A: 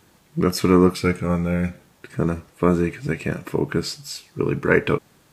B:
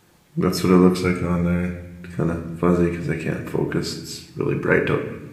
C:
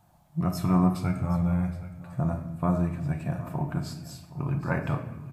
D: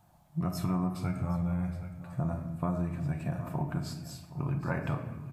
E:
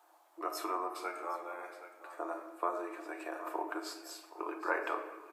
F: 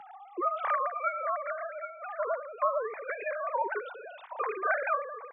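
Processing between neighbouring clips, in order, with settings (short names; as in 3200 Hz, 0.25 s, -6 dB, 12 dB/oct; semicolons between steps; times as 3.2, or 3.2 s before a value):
reverb RT60 0.95 s, pre-delay 6 ms, DRR 4 dB; gain -1.5 dB
EQ curve 140 Hz 0 dB, 300 Hz -11 dB, 450 Hz -22 dB, 660 Hz +5 dB, 1900 Hz -15 dB, 6200 Hz -12 dB, 9300 Hz -9 dB, 13000 Hz -6 dB; echo 0.769 s -17 dB; gain -1.5 dB
compressor 4:1, threshold -26 dBFS, peak gain reduction 8.5 dB; gain -1.5 dB
rippled Chebyshev high-pass 310 Hz, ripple 6 dB; gain +6 dB
sine-wave speech; three-band squash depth 40%; gain +7 dB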